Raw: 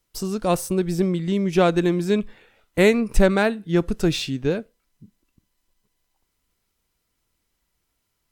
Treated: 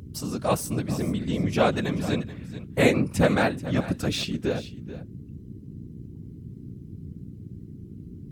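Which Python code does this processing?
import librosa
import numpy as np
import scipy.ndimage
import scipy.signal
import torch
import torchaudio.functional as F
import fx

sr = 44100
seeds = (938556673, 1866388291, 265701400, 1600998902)

p1 = fx.add_hum(x, sr, base_hz=60, snr_db=12)
p2 = fx.peak_eq(p1, sr, hz=360.0, db=-13.5, octaves=0.25)
p3 = fx.whisperise(p2, sr, seeds[0])
p4 = scipy.signal.sosfilt(scipy.signal.butter(2, 83.0, 'highpass', fs=sr, output='sos'), p3)
p5 = p4 + fx.echo_single(p4, sr, ms=433, db=-15.0, dry=0)
y = p5 * 10.0 ** (-2.0 / 20.0)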